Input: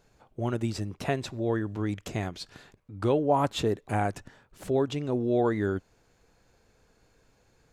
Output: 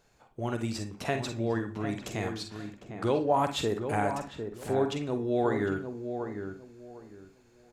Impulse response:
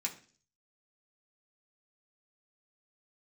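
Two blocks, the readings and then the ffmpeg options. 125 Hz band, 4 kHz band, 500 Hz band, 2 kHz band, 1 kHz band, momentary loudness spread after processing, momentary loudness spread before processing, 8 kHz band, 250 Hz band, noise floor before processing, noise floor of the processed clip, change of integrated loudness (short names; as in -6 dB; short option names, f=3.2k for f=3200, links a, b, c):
-3.5 dB, +0.5 dB, -1.0 dB, +1.0 dB, 0.0 dB, 15 LU, 14 LU, +1.5 dB, -2.0 dB, -67 dBFS, -62 dBFS, -2.0 dB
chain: -filter_complex "[0:a]lowshelf=f=440:g=-5,asplit=2[a][b];[b]adelay=753,lowpass=f=1.2k:p=1,volume=-7dB,asplit=2[c][d];[d]adelay=753,lowpass=f=1.2k:p=1,volume=0.25,asplit=2[e][f];[f]adelay=753,lowpass=f=1.2k:p=1,volume=0.25[g];[a][c][e][g]amix=inputs=4:normalize=0,asplit=2[h][i];[1:a]atrim=start_sample=2205,adelay=45[j];[i][j]afir=irnorm=-1:irlink=0,volume=-8dB[k];[h][k]amix=inputs=2:normalize=0"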